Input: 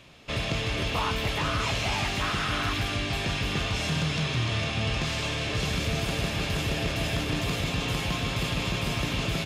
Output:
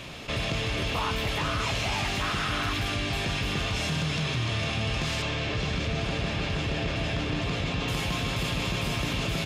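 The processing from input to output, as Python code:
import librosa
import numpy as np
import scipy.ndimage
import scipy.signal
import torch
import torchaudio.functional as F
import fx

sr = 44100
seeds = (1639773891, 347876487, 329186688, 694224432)

y = fx.air_absorb(x, sr, metres=90.0, at=(5.22, 7.88))
y = fx.env_flatten(y, sr, amount_pct=50)
y = y * 10.0 ** (-2.0 / 20.0)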